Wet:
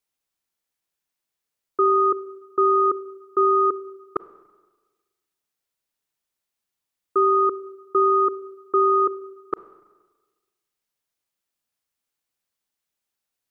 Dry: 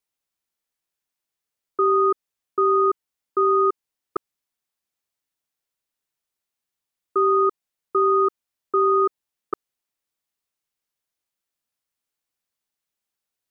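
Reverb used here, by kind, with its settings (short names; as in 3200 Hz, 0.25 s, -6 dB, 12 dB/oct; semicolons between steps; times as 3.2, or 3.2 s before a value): Schroeder reverb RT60 1.3 s, combs from 32 ms, DRR 15.5 dB; gain +1 dB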